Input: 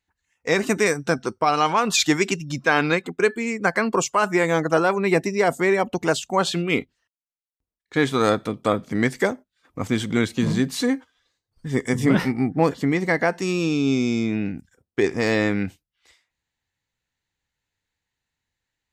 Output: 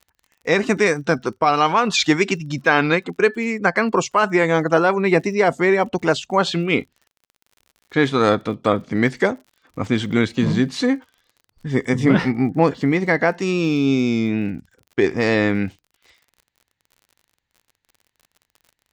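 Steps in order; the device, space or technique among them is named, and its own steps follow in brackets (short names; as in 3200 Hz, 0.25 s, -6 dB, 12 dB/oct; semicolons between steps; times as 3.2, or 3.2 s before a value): lo-fi chain (LPF 5100 Hz 12 dB/oct; wow and flutter 23 cents; crackle 49/s -42 dBFS); gain +3 dB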